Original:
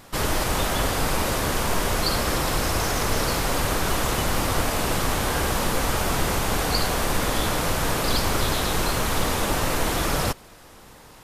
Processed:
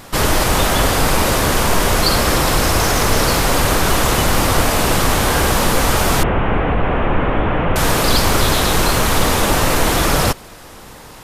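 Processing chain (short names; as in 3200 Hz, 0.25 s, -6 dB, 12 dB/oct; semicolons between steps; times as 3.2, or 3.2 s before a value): 6.23–7.76 delta modulation 16 kbps, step -34 dBFS; in parallel at -11 dB: soft clip -25.5 dBFS, distortion -9 dB; on the sum: gain +7.5 dB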